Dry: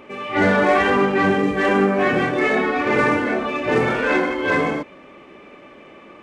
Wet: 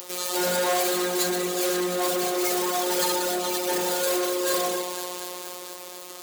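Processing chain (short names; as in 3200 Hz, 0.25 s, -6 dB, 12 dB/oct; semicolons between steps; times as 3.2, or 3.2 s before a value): median filter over 25 samples; on a send: echo with dull and thin repeats by turns 0.118 s, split 850 Hz, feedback 82%, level -12 dB; on the sum: robotiser 179 Hz; in parallel at -0.5 dB: limiter -12 dBFS, peak gain reduction 8 dB; on the sum: tone controls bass -9 dB, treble +11 dB; soft clip -17 dBFS, distortion -8 dB; RIAA curve recording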